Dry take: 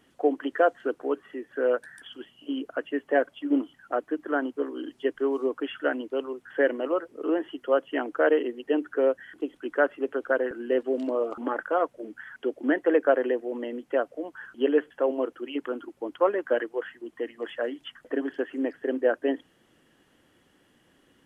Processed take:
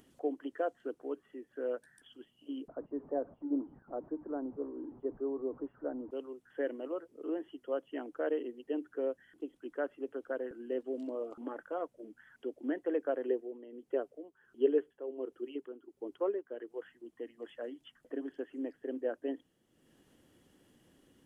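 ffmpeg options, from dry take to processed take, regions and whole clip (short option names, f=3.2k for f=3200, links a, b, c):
-filter_complex "[0:a]asettb=1/sr,asplit=3[a][b][c];[a]atrim=end=2.684[d];[b]atrim=start=2.68:end=6.11,asetpts=PTS-STARTPTS,afade=t=in:d=0.004:c=qsin,afade=t=out:st=3.426:d=0.004:c=qsin,aeval=exprs='val(0)+0.5*0.015*sgn(val(0))':c=same,lowpass=f=1.1k:w=0.5412,lowpass=f=1.1k:w=1.3066[e];[c]atrim=start=6.106[f];[d][e]acrossfade=d=0.004:c1=hsin:c2=qsin[g];[g][f]acrossfade=d=0.004:c1=qsin:c2=hsin,asettb=1/sr,asplit=3[h][i][j];[h]atrim=end=13.284[k];[i]atrim=start=13.28:end=16.7,asetpts=PTS-STARTPTS,afade=t=in:d=0.004:c=qsin,afade=t=out:st=3.416:d=0.004:c=qsin,tremolo=f=1.4:d=0.69,equalizer=f=400:w=4.2:g=10[l];[j]atrim=start=16.696[m];[k][l]acrossfade=d=0.004:c1=hsin:c2=qsin[n];[n][m]acrossfade=d=0.004:c1=qsin:c2=hsin,equalizer=f=1.6k:w=0.48:g=-9,acompressor=mode=upward:threshold=-47dB:ratio=2.5,volume=-8.5dB"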